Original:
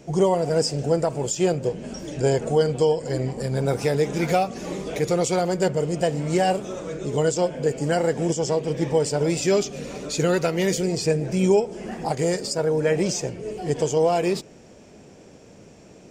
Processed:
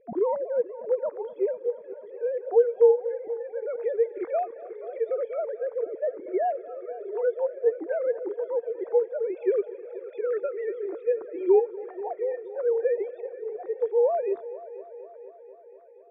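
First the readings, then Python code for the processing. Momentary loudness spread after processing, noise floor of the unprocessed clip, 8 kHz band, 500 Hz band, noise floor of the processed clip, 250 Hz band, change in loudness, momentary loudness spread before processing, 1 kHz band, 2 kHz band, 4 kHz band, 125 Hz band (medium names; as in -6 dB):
15 LU, -48 dBFS, under -40 dB, -2.0 dB, -48 dBFS, -13.5 dB, -4.0 dB, 8 LU, -7.5 dB, -14.5 dB, under -35 dB, under -35 dB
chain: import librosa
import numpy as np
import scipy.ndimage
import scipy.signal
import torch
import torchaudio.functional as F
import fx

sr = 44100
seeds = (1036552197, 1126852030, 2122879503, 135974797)

y = fx.sine_speech(x, sr)
y = np.convolve(y, np.full(15, 1.0 / 15))[:len(y)]
y = fx.echo_heads(y, sr, ms=241, heads='first and second', feedback_pct=65, wet_db=-19.5)
y = y * librosa.db_to_amplitude(-4.0)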